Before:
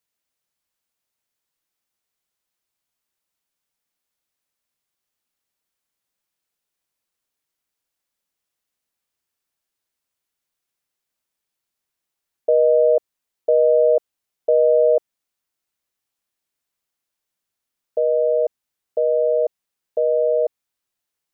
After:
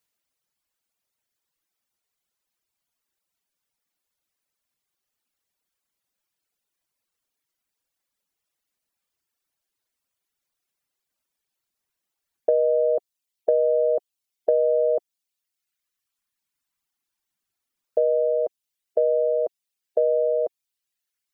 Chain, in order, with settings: reverb removal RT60 1.8 s; compression, threshold -19 dBFS, peak gain reduction 6.5 dB; trim +2.5 dB

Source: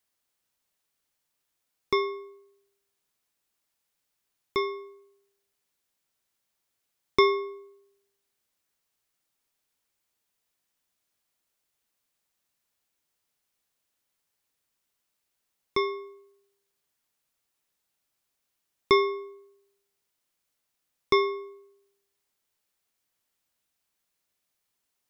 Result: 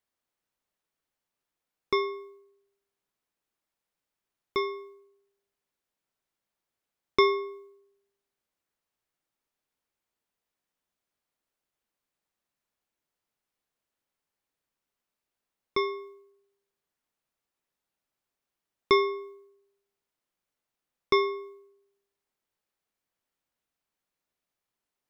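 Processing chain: peaking EQ 90 Hz -3.5 dB 1.1 oct; tape noise reduction on one side only decoder only; trim -1 dB

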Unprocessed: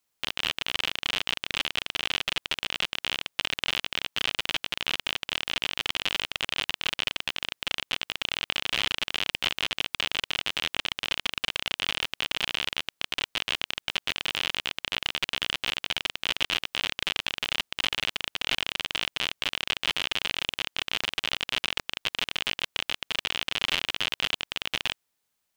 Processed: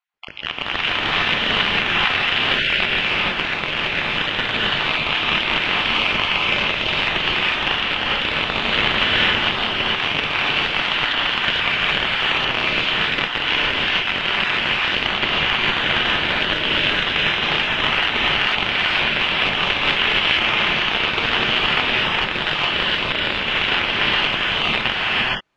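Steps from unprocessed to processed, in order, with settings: random holes in the spectrogram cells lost 33%; low-pass 2.2 kHz 12 dB/octave; level rider gain up to 12.5 dB; gated-style reverb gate 490 ms rising, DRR -6 dB

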